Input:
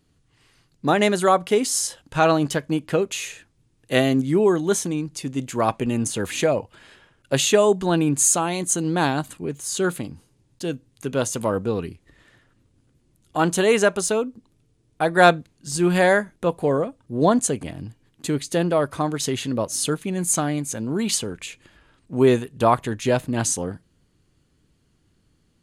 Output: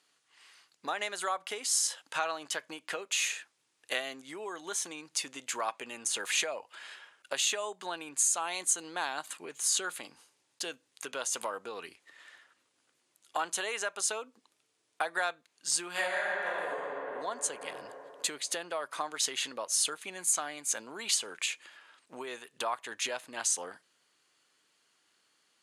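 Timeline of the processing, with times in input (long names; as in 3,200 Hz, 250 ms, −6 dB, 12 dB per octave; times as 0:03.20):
0:15.91–0:16.75: thrown reverb, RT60 2.4 s, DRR −9.5 dB
whole clip: low-pass filter 11,000 Hz 12 dB per octave; downward compressor 12 to 1, threshold −27 dBFS; high-pass filter 910 Hz 12 dB per octave; level +3 dB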